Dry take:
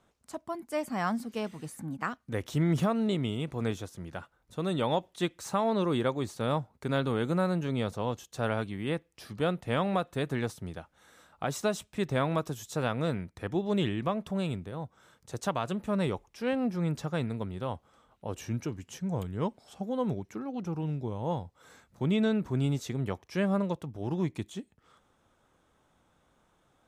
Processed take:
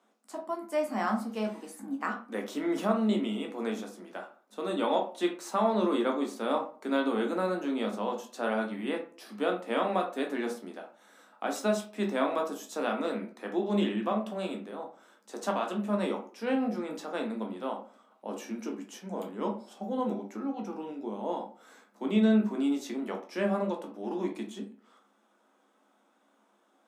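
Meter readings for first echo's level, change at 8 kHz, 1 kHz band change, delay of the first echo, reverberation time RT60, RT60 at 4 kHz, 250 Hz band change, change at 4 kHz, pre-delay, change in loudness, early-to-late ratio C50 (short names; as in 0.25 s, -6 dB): none, -1.5 dB, +2.0 dB, none, 0.45 s, 0.25 s, +1.0 dB, -1.0 dB, 10 ms, +0.5 dB, 9.0 dB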